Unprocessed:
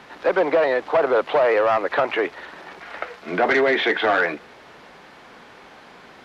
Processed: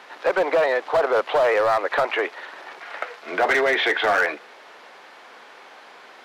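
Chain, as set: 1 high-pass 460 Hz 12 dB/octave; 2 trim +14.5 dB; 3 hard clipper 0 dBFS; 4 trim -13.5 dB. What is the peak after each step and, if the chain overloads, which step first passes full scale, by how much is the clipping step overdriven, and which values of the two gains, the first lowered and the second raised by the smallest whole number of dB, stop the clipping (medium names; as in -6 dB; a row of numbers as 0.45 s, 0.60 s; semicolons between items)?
-8.5 dBFS, +6.0 dBFS, 0.0 dBFS, -13.5 dBFS; step 2, 6.0 dB; step 2 +8.5 dB, step 4 -7.5 dB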